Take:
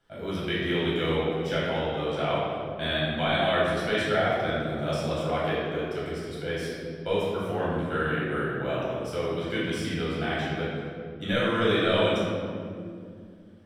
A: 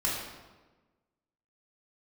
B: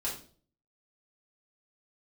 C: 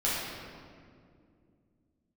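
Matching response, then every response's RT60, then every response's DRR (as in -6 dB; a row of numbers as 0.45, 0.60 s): C; 1.2, 0.45, 2.3 s; -6.0, -6.5, -9.0 dB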